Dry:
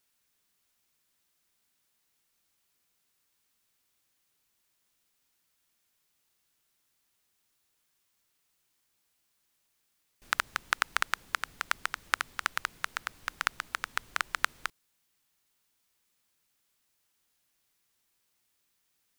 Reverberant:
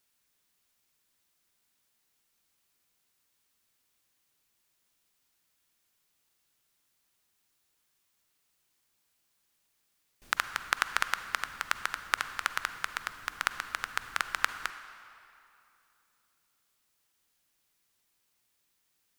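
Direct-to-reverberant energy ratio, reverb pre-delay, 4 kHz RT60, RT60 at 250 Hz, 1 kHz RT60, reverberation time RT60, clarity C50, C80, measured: 10.5 dB, 38 ms, 2.0 s, 2.7 s, 2.9 s, 2.8 s, 11.0 dB, 11.5 dB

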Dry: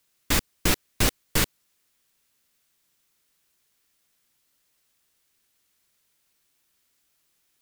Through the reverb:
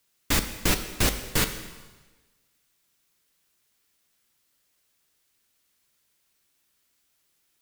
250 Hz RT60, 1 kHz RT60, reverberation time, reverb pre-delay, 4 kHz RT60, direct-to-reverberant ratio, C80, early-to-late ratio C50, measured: 1.3 s, 1.3 s, 1.3 s, 4 ms, 1.2 s, 7.5 dB, 11.5 dB, 10.0 dB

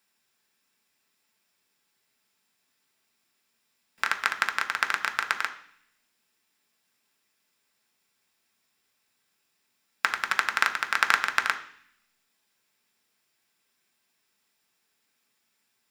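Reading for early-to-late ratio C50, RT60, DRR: 12.5 dB, 0.60 s, 4.5 dB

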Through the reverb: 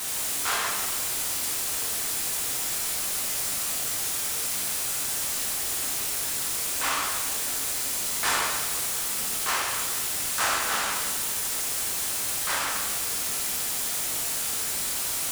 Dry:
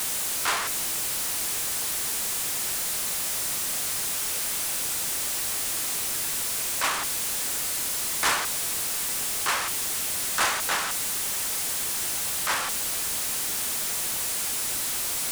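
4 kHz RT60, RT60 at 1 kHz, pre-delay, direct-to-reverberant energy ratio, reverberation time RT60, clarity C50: 1.3 s, 1.4 s, 4 ms, −3.0 dB, 1.4 s, 1.0 dB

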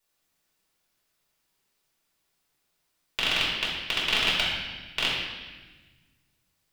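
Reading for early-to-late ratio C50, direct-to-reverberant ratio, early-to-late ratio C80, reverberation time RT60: 0.5 dB, −7.5 dB, 3.0 dB, 1.3 s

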